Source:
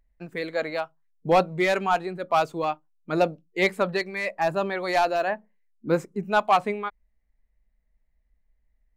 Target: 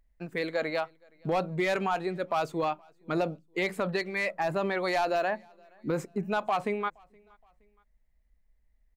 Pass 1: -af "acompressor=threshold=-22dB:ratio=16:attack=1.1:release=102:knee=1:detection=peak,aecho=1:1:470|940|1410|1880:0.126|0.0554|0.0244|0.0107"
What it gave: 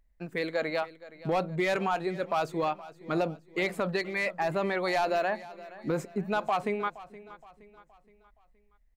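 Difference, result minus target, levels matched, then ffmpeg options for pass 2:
echo-to-direct +11.5 dB
-af "acompressor=threshold=-22dB:ratio=16:attack=1.1:release=102:knee=1:detection=peak,aecho=1:1:470|940:0.0335|0.0147"

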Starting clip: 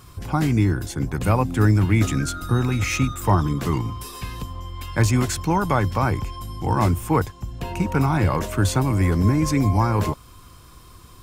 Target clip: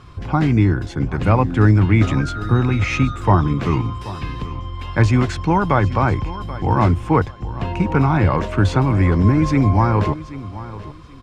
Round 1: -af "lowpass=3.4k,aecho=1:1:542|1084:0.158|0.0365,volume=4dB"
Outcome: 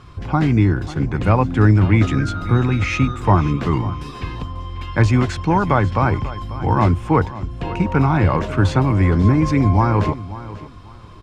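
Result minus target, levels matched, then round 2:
echo 0.24 s early
-af "lowpass=3.4k,aecho=1:1:782|1564:0.158|0.0365,volume=4dB"

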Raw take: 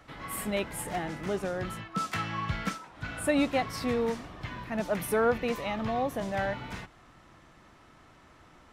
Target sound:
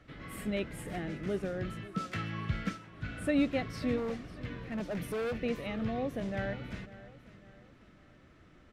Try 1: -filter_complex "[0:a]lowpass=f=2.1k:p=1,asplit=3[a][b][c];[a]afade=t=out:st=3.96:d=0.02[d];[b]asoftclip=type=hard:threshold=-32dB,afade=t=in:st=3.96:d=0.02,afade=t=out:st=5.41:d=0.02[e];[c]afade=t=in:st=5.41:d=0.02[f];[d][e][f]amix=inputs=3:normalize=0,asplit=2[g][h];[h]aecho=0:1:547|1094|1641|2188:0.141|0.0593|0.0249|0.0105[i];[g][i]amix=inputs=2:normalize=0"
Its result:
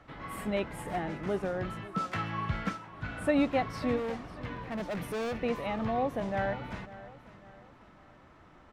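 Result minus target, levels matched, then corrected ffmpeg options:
1000 Hz band +6.5 dB
-filter_complex "[0:a]lowpass=f=2.1k:p=1,equalizer=f=910:t=o:w=0.91:g=-14,asplit=3[a][b][c];[a]afade=t=out:st=3.96:d=0.02[d];[b]asoftclip=type=hard:threshold=-32dB,afade=t=in:st=3.96:d=0.02,afade=t=out:st=5.41:d=0.02[e];[c]afade=t=in:st=5.41:d=0.02[f];[d][e][f]amix=inputs=3:normalize=0,asplit=2[g][h];[h]aecho=0:1:547|1094|1641|2188:0.141|0.0593|0.0249|0.0105[i];[g][i]amix=inputs=2:normalize=0"

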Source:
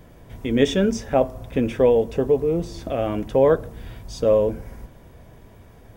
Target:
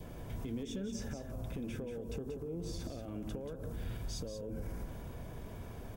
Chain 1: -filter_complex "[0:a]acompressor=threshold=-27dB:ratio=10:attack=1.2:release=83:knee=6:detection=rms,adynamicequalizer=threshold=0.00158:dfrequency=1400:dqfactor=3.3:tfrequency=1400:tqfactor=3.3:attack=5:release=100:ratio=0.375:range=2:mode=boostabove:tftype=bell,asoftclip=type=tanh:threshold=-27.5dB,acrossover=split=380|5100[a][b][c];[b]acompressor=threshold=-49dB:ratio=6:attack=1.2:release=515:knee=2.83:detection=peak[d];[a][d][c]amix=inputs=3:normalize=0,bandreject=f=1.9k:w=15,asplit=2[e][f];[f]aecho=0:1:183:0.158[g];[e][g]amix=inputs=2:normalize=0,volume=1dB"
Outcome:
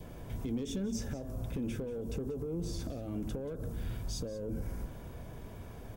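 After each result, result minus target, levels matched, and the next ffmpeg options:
compressor: peak gain reduction -6.5 dB; echo-to-direct -8 dB
-filter_complex "[0:a]acompressor=threshold=-34.5dB:ratio=10:attack=1.2:release=83:knee=6:detection=rms,adynamicequalizer=threshold=0.00158:dfrequency=1400:dqfactor=3.3:tfrequency=1400:tqfactor=3.3:attack=5:release=100:ratio=0.375:range=2:mode=boostabove:tftype=bell,asoftclip=type=tanh:threshold=-27.5dB,acrossover=split=380|5100[a][b][c];[b]acompressor=threshold=-49dB:ratio=6:attack=1.2:release=515:knee=2.83:detection=peak[d];[a][d][c]amix=inputs=3:normalize=0,bandreject=f=1.9k:w=15,asplit=2[e][f];[f]aecho=0:1:183:0.158[g];[e][g]amix=inputs=2:normalize=0,volume=1dB"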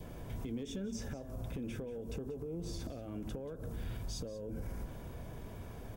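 echo-to-direct -8 dB
-filter_complex "[0:a]acompressor=threshold=-34.5dB:ratio=10:attack=1.2:release=83:knee=6:detection=rms,adynamicequalizer=threshold=0.00158:dfrequency=1400:dqfactor=3.3:tfrequency=1400:tqfactor=3.3:attack=5:release=100:ratio=0.375:range=2:mode=boostabove:tftype=bell,asoftclip=type=tanh:threshold=-27.5dB,acrossover=split=380|5100[a][b][c];[b]acompressor=threshold=-49dB:ratio=6:attack=1.2:release=515:knee=2.83:detection=peak[d];[a][d][c]amix=inputs=3:normalize=0,bandreject=f=1.9k:w=15,asplit=2[e][f];[f]aecho=0:1:183:0.398[g];[e][g]amix=inputs=2:normalize=0,volume=1dB"

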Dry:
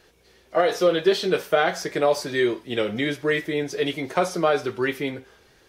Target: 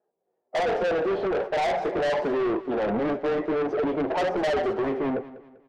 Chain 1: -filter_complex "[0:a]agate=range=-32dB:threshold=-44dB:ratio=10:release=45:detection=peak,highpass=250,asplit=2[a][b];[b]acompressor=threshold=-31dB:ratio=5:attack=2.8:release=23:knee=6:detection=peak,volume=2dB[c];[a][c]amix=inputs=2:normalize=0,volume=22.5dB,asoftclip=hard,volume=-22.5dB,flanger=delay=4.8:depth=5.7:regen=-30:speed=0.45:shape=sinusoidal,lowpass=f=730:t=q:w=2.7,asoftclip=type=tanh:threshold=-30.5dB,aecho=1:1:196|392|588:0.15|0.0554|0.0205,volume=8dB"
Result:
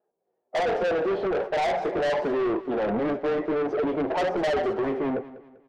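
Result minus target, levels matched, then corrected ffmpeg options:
compressor: peak gain reduction +9 dB
-filter_complex "[0:a]agate=range=-32dB:threshold=-44dB:ratio=10:release=45:detection=peak,highpass=250,asplit=2[a][b];[b]acompressor=threshold=-20dB:ratio=5:attack=2.8:release=23:knee=6:detection=peak,volume=2dB[c];[a][c]amix=inputs=2:normalize=0,volume=22.5dB,asoftclip=hard,volume=-22.5dB,flanger=delay=4.8:depth=5.7:regen=-30:speed=0.45:shape=sinusoidal,lowpass=f=730:t=q:w=2.7,asoftclip=type=tanh:threshold=-30.5dB,aecho=1:1:196|392|588:0.15|0.0554|0.0205,volume=8dB"

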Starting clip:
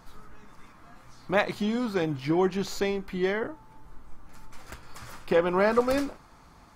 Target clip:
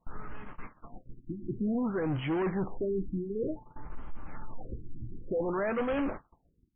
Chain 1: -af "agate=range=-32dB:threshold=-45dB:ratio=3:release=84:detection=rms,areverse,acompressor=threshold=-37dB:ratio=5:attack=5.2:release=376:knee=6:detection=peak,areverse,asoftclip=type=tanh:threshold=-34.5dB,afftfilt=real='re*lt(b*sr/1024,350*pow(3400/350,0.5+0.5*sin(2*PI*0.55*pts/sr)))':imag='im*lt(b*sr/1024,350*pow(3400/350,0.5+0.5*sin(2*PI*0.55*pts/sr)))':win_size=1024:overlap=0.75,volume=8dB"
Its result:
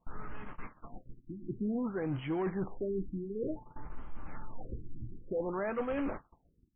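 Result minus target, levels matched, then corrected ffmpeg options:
compressor: peak gain reduction +7.5 dB
-af "agate=range=-32dB:threshold=-45dB:ratio=3:release=84:detection=rms,areverse,acompressor=threshold=-27.5dB:ratio=5:attack=5.2:release=376:knee=6:detection=peak,areverse,asoftclip=type=tanh:threshold=-34.5dB,afftfilt=real='re*lt(b*sr/1024,350*pow(3400/350,0.5+0.5*sin(2*PI*0.55*pts/sr)))':imag='im*lt(b*sr/1024,350*pow(3400/350,0.5+0.5*sin(2*PI*0.55*pts/sr)))':win_size=1024:overlap=0.75,volume=8dB"

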